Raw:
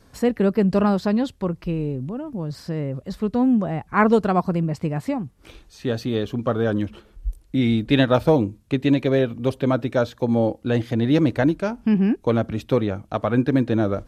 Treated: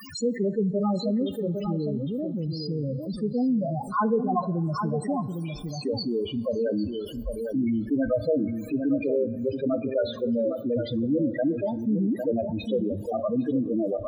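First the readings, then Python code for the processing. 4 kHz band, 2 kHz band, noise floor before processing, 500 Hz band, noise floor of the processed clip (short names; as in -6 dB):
-5.0 dB, -13.5 dB, -55 dBFS, -4.0 dB, -37 dBFS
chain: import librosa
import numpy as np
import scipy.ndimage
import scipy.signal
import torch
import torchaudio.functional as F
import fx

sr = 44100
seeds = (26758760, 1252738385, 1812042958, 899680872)

y = fx.tilt_eq(x, sr, slope=2.5)
y = fx.dmg_noise_colour(y, sr, seeds[0], colour='white', level_db=-45.0)
y = fx.spec_topn(y, sr, count=4)
y = y + 10.0 ** (-11.0 / 20.0) * np.pad(y, (int(805 * sr / 1000.0), 0))[:len(y)]
y = fx.rev_double_slope(y, sr, seeds[1], early_s=0.56, late_s=4.7, knee_db=-18, drr_db=17.5)
y = fx.env_flatten(y, sr, amount_pct=50)
y = y * 10.0 ** (-3.5 / 20.0)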